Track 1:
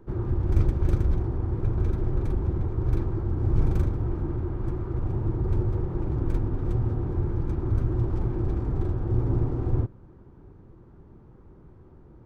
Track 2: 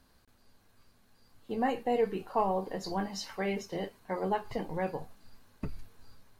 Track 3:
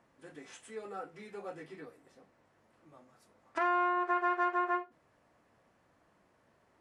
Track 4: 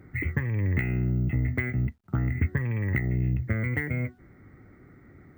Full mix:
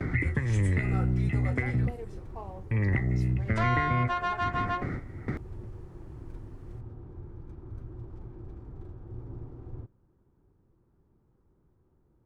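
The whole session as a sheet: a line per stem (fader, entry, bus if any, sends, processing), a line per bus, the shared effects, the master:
-17.0 dB, 0.00 s, no send, none
-14.5 dB, 0.00 s, no send, local Wiener filter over 15 samples
+3.0 dB, 0.00 s, no send, saturation -26.5 dBFS, distortion -16 dB; high-pass 460 Hz 24 dB/octave; treble shelf 4.9 kHz +5.5 dB
-1.0 dB, 0.00 s, muted 2.05–2.71 s, no send, gate with hold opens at -42 dBFS; low-pass 5.1 kHz 12 dB/octave; three bands compressed up and down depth 100%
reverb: none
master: none

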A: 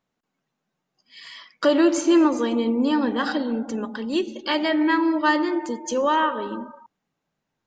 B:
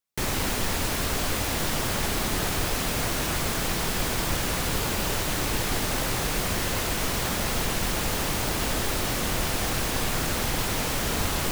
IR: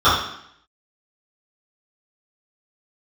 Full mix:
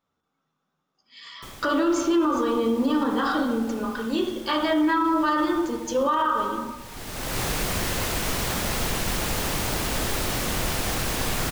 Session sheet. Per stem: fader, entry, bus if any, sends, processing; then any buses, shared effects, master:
-3.0 dB, 0.00 s, send -22.5 dB, none
+0.5 dB, 1.25 s, no send, auto duck -19 dB, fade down 1.75 s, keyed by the first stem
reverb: on, RT60 0.70 s, pre-delay 3 ms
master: peak limiter -14.5 dBFS, peak gain reduction 9.5 dB

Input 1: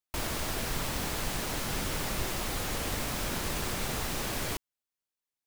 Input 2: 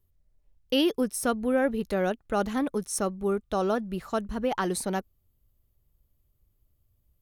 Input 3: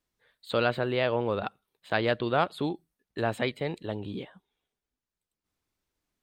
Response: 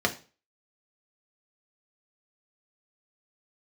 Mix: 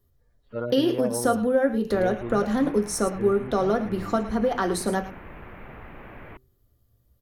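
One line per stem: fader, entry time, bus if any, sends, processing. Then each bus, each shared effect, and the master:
-7.5 dB, 1.80 s, no send, no echo send, steep low-pass 2.4 kHz 36 dB/octave; de-hum 128.6 Hz, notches 3
+0.5 dB, 0.00 s, send -6.5 dB, echo send -7.5 dB, compression 2.5:1, threshold -31 dBFS, peak gain reduction 8 dB
-2.0 dB, 0.00 s, no send, no echo send, harmonic-percussive separation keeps harmonic; low-pass 1.5 kHz 12 dB/octave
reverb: on, RT60 0.35 s, pre-delay 3 ms
echo: delay 109 ms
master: none

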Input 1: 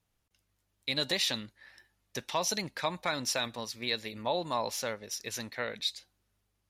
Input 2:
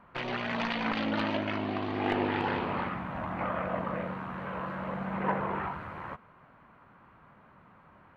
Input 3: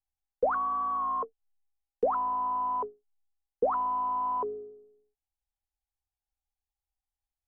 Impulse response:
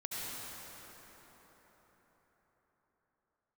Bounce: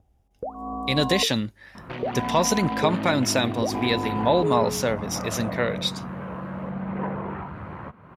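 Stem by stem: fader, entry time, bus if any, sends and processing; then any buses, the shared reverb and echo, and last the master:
-3.0 dB, 0.00 s, no bus, no send, band-stop 4.2 kHz, Q 9.4
-14.0 dB, 1.75 s, bus A, no send, none
0.0 dB, 0.00 s, bus A, no send, steep low-pass 790 Hz 36 dB/octave; compression, threshold -35 dBFS, peak gain reduction 13 dB
bus A: 0.0 dB, upward compressor, threshold -45 dBFS; peak limiter -33.5 dBFS, peak gain reduction 9 dB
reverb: none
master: high-pass 47 Hz; bass shelf 500 Hz +11 dB; level rider gain up to 9.5 dB

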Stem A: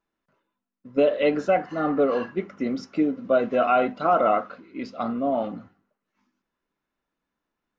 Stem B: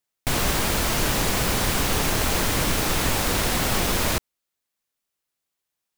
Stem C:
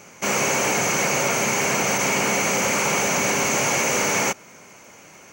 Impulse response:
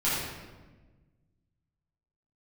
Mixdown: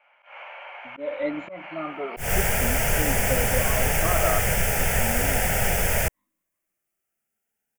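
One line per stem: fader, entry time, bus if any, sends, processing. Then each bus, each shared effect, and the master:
-13.0 dB, 0.00 s, no send, drifting ripple filter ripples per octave 1.1, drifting +0.4 Hz, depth 23 dB; low-pass 2.2 kHz 6 dB/octave
+2.5 dB, 1.90 s, no send, static phaser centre 1.1 kHz, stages 6
-16.5 dB, 0.00 s, send -7.5 dB, Chebyshev band-pass 580–3100 Hz, order 4; compression, threshold -27 dBFS, peak gain reduction 6.5 dB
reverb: on, RT60 1.3 s, pre-delay 7 ms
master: slow attack 155 ms

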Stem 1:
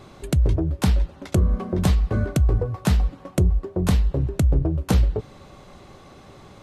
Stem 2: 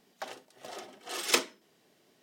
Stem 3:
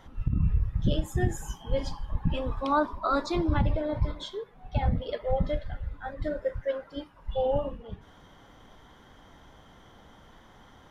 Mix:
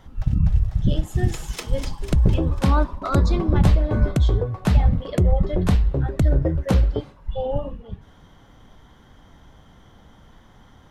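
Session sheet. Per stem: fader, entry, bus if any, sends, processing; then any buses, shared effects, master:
+0.5 dB, 1.80 s, no send, no echo send, treble shelf 5 kHz -9 dB; gate with hold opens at -32 dBFS
-4.5 dB, 0.00 s, no send, echo send -4 dB, auto duck -10 dB, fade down 0.80 s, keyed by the third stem
0.0 dB, 0.00 s, no send, no echo send, tone controls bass +7 dB, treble +2 dB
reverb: none
echo: feedback delay 248 ms, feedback 53%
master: none

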